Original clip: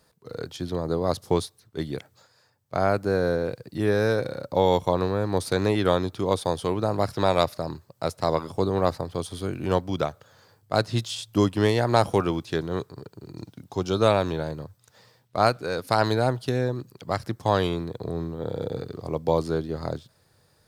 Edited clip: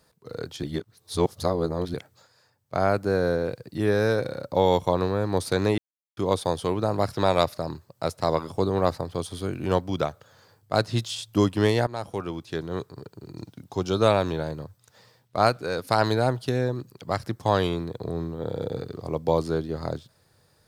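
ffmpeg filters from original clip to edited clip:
-filter_complex "[0:a]asplit=6[a][b][c][d][e][f];[a]atrim=end=0.632[g];[b]atrim=start=0.628:end=1.942,asetpts=PTS-STARTPTS,areverse[h];[c]atrim=start=1.938:end=5.78,asetpts=PTS-STARTPTS,afade=t=out:st=3.838:d=0.004:c=hsin[i];[d]atrim=start=5.78:end=6.17,asetpts=PTS-STARTPTS,volume=0[j];[e]atrim=start=6.17:end=11.87,asetpts=PTS-STARTPTS,afade=t=in:d=0.004:c=hsin,afade=t=out:st=5.696:d=0.004:c=hsin:silence=0.141254[k];[f]atrim=start=11.87,asetpts=PTS-STARTPTS,afade=t=in:d=1.18:silence=0.141254[l];[g][h]acrossfade=d=0.004:c1=hsin:c2=hsin[m];[i][j][k][l]concat=n=4:v=0:a=1[n];[m][n]acrossfade=d=0.004:c1=hsin:c2=hsin"

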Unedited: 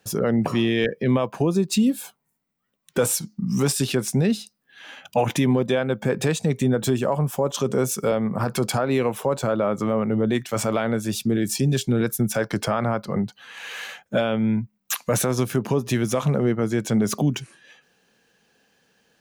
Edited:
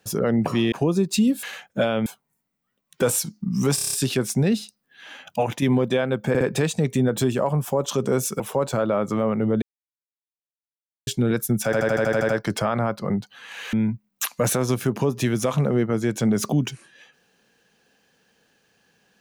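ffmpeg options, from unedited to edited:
-filter_complex "[0:a]asplit=25[a][b][c][d][e][f][g][h][i][j][k][l][m][n][o][p][q][r][s][t][u][v][w][x][y];[a]atrim=end=0.722[z];[b]atrim=start=1.308:end=2.022[aa];[c]atrim=start=13.788:end=14.422[ab];[d]atrim=start=2.018:end=3.742[ac];[e]atrim=start=3.708:end=3.742[ad];[f]atrim=start=3.708:end=3.742[ae];[g]atrim=start=3.708:end=3.742[af];[h]atrim=start=3.708:end=3.742[ag];[i]atrim=start=3.708:end=3.742[ah];[j]atrim=start=3.708:end=5.4,asetpts=PTS-STARTPTS,afade=t=out:st=1.212:d=0.48:c=qsin:silence=0.421697[ai];[k]atrim=start=5.4:end=6.132,asetpts=PTS-STARTPTS,afade=t=in:d=0.004:c=hsin:silence=0.421697[aj];[l]atrim=start=6.068:end=6.132[ak];[m]atrim=start=6.068:end=8.062[al];[n]atrim=start=9.098:end=10.32,asetpts=PTS-STARTPTS,afade=t=out:st=1.218:d=0.004:c=hsin[am];[o]atrim=start=10.32:end=11.77,asetpts=PTS-STARTPTS,volume=0[an];[p]atrim=start=11.77:end=12.432,asetpts=PTS-STARTPTS,afade=t=in:d=0.004:c=hsin[ao];[q]atrim=start=12.348:end=12.432[ap];[r]atrim=start=12.348:end=12.432[aq];[s]atrim=start=12.348:end=12.432[ar];[t]atrim=start=12.348:end=12.432[as];[u]atrim=start=12.348:end=12.432[at];[v]atrim=start=12.348:end=12.432[au];[w]atrim=start=12.348:end=12.432[av];[x]atrim=start=12.348:end=13.792[aw];[y]atrim=start=14.418[ax];[z][aa]acrossfade=d=0.004:c1=hsin:c2=hsin[ay];[ay][ab]acrossfade=d=0.004:c1=hsin:c2=hsin[az];[az][ac]acrossfade=d=0.004:c1=hsin:c2=hsin[ba];[ba][ad]acrossfade=d=0.004:c1=hsin:c2=hsin[bb];[bb][ae]acrossfade=d=0.004:c1=hsin:c2=hsin[bc];[bc][af]acrossfade=d=0.004:c1=hsin:c2=hsin[bd];[bd][ag]acrossfade=d=0.004:c1=hsin:c2=hsin[be];[be][ah]acrossfade=d=0.004:c1=hsin:c2=hsin[bf];[ai][aj]concat=n=2:v=0:a=1[bg];[bf][bg]acrossfade=d=0.004:c1=hsin:c2=hsin[bh];[bh][ak]acrossfade=d=0.004:c1=hsin:c2=hsin[bi];[bi][al]acrossfade=d=0.004:c1=hsin:c2=hsin[bj];[am][an][ao]concat=n=3:v=0:a=1[bk];[bj][bk]acrossfade=d=0.004:c1=hsin:c2=hsin[bl];[bl][ap]acrossfade=d=0.004:c1=hsin:c2=hsin[bm];[bm][aq]acrossfade=d=0.004:c1=hsin:c2=hsin[bn];[bn][ar]acrossfade=d=0.004:c1=hsin:c2=hsin[bo];[bo][as]acrossfade=d=0.004:c1=hsin:c2=hsin[bp];[bp][at]acrossfade=d=0.004:c1=hsin:c2=hsin[bq];[bq][au]acrossfade=d=0.004:c1=hsin:c2=hsin[br];[br][av]acrossfade=d=0.004:c1=hsin:c2=hsin[bs];[bs][aw]acrossfade=d=0.004:c1=hsin:c2=hsin[bt];[bt][ax]acrossfade=d=0.004:c1=hsin:c2=hsin"

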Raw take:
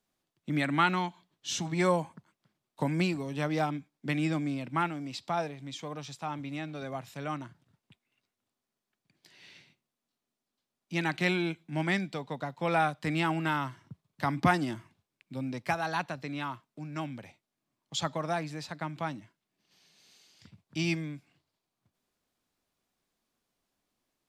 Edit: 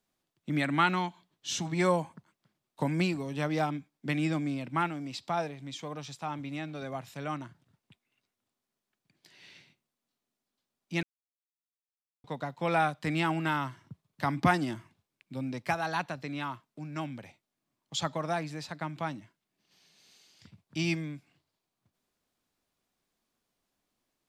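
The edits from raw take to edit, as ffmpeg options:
-filter_complex "[0:a]asplit=3[a][b][c];[a]atrim=end=11.03,asetpts=PTS-STARTPTS,afade=t=out:st=11.026:d=0.004:c=hsin[d];[b]atrim=start=11.03:end=12.24,asetpts=PTS-STARTPTS,volume=0[e];[c]atrim=start=12.24,asetpts=PTS-STARTPTS,afade=t=in:d=0.004:c=hsin[f];[d][e][f]concat=n=3:v=0:a=1"

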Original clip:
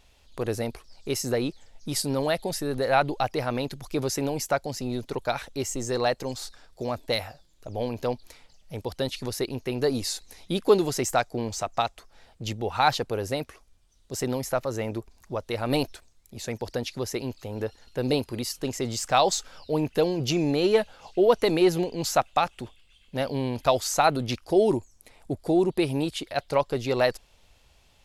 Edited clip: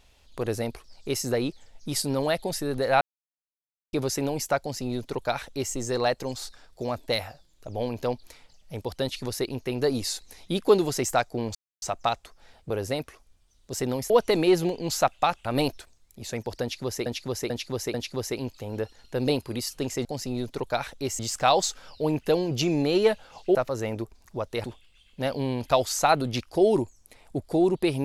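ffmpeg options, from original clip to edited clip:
-filter_complex "[0:a]asplit=14[a][b][c][d][e][f][g][h][i][j][k][l][m][n];[a]atrim=end=3.01,asetpts=PTS-STARTPTS,afade=t=out:st=3.006:d=0.004:c=hsin[o];[b]atrim=start=3.01:end=3.93,asetpts=PTS-STARTPTS,volume=0[p];[c]atrim=start=3.93:end=11.55,asetpts=PTS-STARTPTS,afade=t=in:d=0.004:c=hsin,afade=t=out:st=7.616:d=0.004:c=hsin,apad=pad_dur=0.27[q];[d]atrim=start=11.55:end=12.432,asetpts=PTS-STARTPTS,afade=t=in:d=0.004:c=hsin[r];[e]atrim=start=13.108:end=14.512[s];[f]atrim=start=21.238:end=22.592[t];[g]atrim=start=15.598:end=17.212[u];[h]atrim=start=16.768:end=17.212[v];[i]atrim=start=16.768:end=17.212[w];[j]atrim=start=16.768:end=18.882[x];[k]atrim=start=4.598:end=5.742[y];[l]atrim=start=18.878:end=21.242[z];[m]atrim=start=14.508:end=15.602[aa];[n]atrim=start=22.588[ab];[o][p][q][r]concat=n=4:v=0:a=1[ac];[ac][s]acrossfade=d=0.004:c1=hsin:c2=hsin[ad];[ad][t]acrossfade=d=0.004:c1=hsin:c2=hsin[ae];[ae][u]acrossfade=d=0.004:c1=hsin:c2=hsin[af];[af][v]acrossfade=d=0.004:c1=hsin:c2=hsin[ag];[ag][w]acrossfade=d=0.004:c1=hsin:c2=hsin[ah];[ah][x]acrossfade=d=0.004:c1=hsin:c2=hsin[ai];[ai][y]acrossfade=d=0.004:c1=hsin:c2=hsin[aj];[aj][z]acrossfade=d=0.004:c1=hsin:c2=hsin[ak];[ak][aa]acrossfade=d=0.004:c1=hsin:c2=hsin[al];[al][ab]acrossfade=d=0.004:c1=hsin:c2=hsin"

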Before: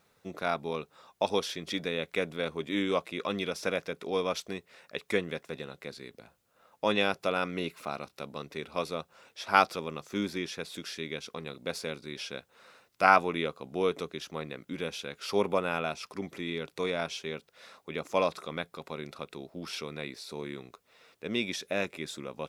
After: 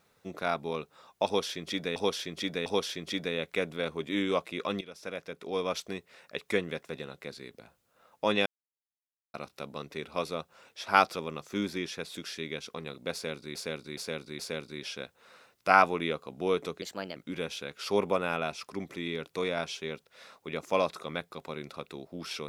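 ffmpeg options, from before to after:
-filter_complex "[0:a]asplit=11[a][b][c][d][e][f][g][h][i][j][k];[a]atrim=end=1.962[l];[b]atrim=start=1.258:end=1.962[m];[c]atrim=start=1.258:end=3.41,asetpts=PTS-STARTPTS,afade=t=out:st=2.148:d=0.004:c=hsin:silence=0.149624[n];[d]atrim=start=3.41:end=7.06,asetpts=PTS-STARTPTS,afade=t=in:d=0.99:silence=0.149624,afade=t=out:st=3.646:d=0.004:c=hsin[o];[e]atrim=start=7.06:end=7.94,asetpts=PTS-STARTPTS,volume=0[p];[f]atrim=start=7.94:end=12.152,asetpts=PTS-STARTPTS,afade=t=in:d=0.004:c=hsin[q];[g]atrim=start=11.728:end=12.152[r];[h]atrim=start=11.728:end=12.152[s];[i]atrim=start=11.728:end=14.164[t];[j]atrim=start=14.16:end=14.58,asetpts=PTS-STARTPTS,asetrate=54684,aresample=44100,atrim=end_sample=14937,asetpts=PTS-STARTPTS[u];[k]atrim=start=14.576[v];[l][m]acrossfade=d=0.004:c1=hsin:c2=hsin[w];[n][o][p][q]concat=n=4:v=0:a=1[x];[w][x]acrossfade=d=0.004:c1=hsin:c2=hsin[y];[y][r]acrossfade=d=0.004:c1=hsin:c2=hsin[z];[z][s]acrossfade=d=0.004:c1=hsin:c2=hsin[aa];[aa][t]acrossfade=d=0.004:c1=hsin:c2=hsin[ab];[ab][u]acrossfade=d=0.004:c1=hsin:c2=hsin[ac];[ac][v]acrossfade=d=0.004:c1=hsin:c2=hsin"

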